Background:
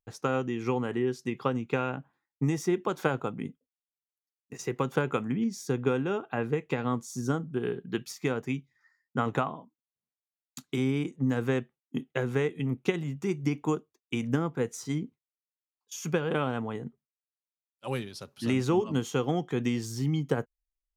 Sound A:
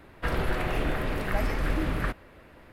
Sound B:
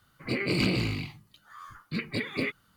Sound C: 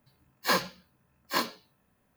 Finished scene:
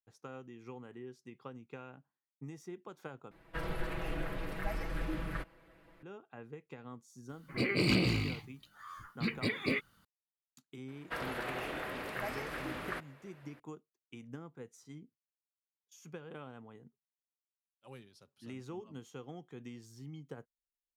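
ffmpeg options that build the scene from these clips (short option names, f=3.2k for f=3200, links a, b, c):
-filter_complex "[1:a]asplit=2[a][b];[0:a]volume=-19dB[c];[a]aecho=1:1:6.1:0.89[d];[b]highpass=f=510:p=1[e];[c]asplit=2[f][g];[f]atrim=end=3.314[h];[d]atrim=end=2.72,asetpts=PTS-STARTPTS,volume=-12.5dB[i];[g]atrim=start=6.026[j];[2:a]atrim=end=2.76,asetpts=PTS-STARTPTS,volume=-2.5dB,afade=t=in:d=0.004:c=hsin,afade=t=out:st=2.756:d=0.004:c=hsin,adelay=7290[k];[e]atrim=end=2.72,asetpts=PTS-STARTPTS,volume=-6dB,afade=t=in:d=0.004:c=hsin,afade=t=out:st=2.716:d=0.004:c=hsin,adelay=10880[l];[h][i]acrossfade=d=0.004:c1=hsin:c2=hsin[m];[m][j]acrossfade=d=0.004:c1=hsin:c2=hsin[n];[n][k][l]amix=inputs=3:normalize=0"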